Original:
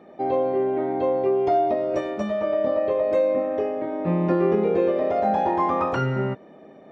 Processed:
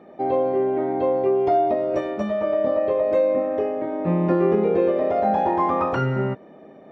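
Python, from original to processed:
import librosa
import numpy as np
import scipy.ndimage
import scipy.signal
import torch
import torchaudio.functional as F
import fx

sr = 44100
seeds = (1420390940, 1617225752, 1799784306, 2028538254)

y = fx.high_shelf(x, sr, hz=4000.0, db=-7.0)
y = F.gain(torch.from_numpy(y), 1.5).numpy()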